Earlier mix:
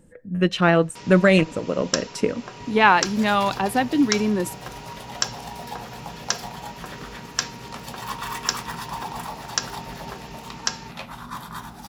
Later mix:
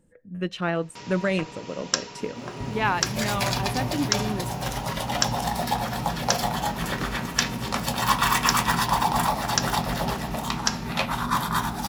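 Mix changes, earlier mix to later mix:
speech -9.0 dB; second sound +10.5 dB

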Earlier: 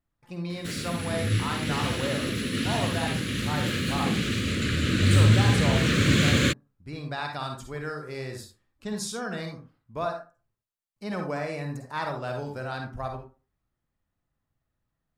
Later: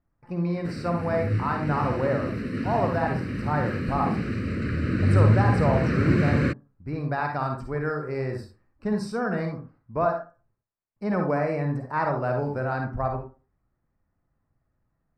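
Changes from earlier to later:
speech +7.0 dB; master: add running mean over 13 samples

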